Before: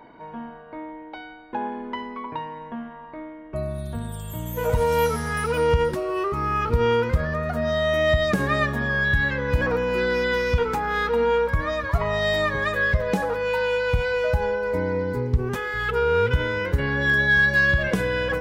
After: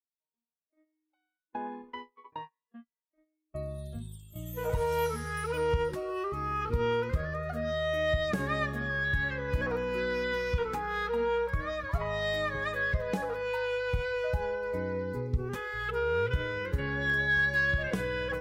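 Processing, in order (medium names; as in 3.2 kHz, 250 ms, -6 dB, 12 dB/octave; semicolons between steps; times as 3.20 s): spectral noise reduction 25 dB; gate -32 dBFS, range -33 dB; trim -8.5 dB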